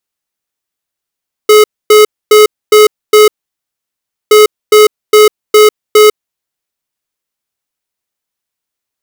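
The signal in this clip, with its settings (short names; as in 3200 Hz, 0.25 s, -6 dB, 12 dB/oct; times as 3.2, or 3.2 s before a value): beep pattern square 425 Hz, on 0.15 s, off 0.26 s, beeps 5, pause 1.03 s, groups 2, -3 dBFS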